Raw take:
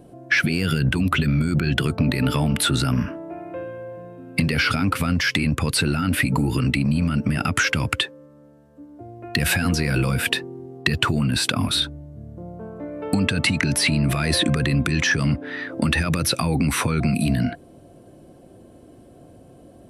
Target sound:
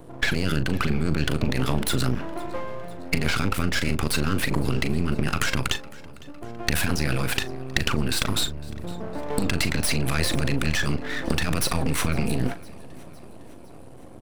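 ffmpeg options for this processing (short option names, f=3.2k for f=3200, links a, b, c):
-filter_complex "[0:a]acompressor=threshold=-22dB:ratio=10,atempo=1.4,aeval=exprs='max(val(0),0)':c=same,asplit=2[a][b];[b]adelay=39,volume=-12dB[c];[a][c]amix=inputs=2:normalize=0,aecho=1:1:507|1014|1521|2028:0.075|0.0435|0.0252|0.0146,volume=5.5dB"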